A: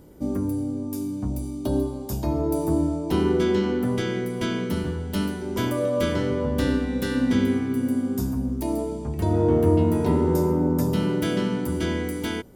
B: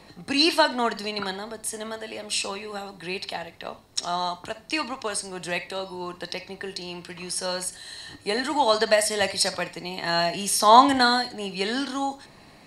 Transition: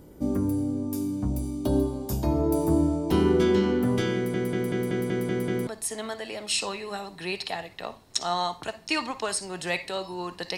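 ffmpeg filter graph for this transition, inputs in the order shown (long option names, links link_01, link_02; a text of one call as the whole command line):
ffmpeg -i cue0.wav -i cue1.wav -filter_complex "[0:a]apad=whole_dur=10.57,atrim=end=10.57,asplit=8[link_01][link_02][link_03][link_04][link_05][link_06][link_07][link_08];[link_01]atrim=end=4.342[link_09];[link_02]atrim=start=4.148:end=4.342[link_10];[link_03]atrim=start=4.148:end=4.342[link_11];[link_04]atrim=start=4.148:end=4.342[link_12];[link_05]atrim=start=4.148:end=4.342[link_13];[link_06]atrim=start=4.148:end=4.342[link_14];[link_07]atrim=start=4.148:end=4.342[link_15];[link_08]atrim=start=4.148:end=4.342[link_16];[1:a]atrim=start=1.488:end=6.39[link_17];[link_09][link_10]acrossfade=duration=0.004:curve1=hsin:curve2=hsin[link_18];[link_18][link_11]acrossfade=duration=0.004:curve1=hsin:curve2=hsin[link_19];[link_19][link_12]acrossfade=duration=0.004:curve1=hsin:curve2=hsin[link_20];[link_20][link_13]acrossfade=duration=0.004:curve1=hsin:curve2=hsin[link_21];[link_21][link_14]acrossfade=duration=0.004:curve1=hsin:curve2=hsin[link_22];[link_22][link_15]acrossfade=duration=0.004:curve1=hsin:curve2=hsin[link_23];[link_23][link_16]acrossfade=duration=0.004:curve1=hsin:curve2=hsin[link_24];[link_24][link_17]acrossfade=duration=0.004:curve1=hsin:curve2=hsin" out.wav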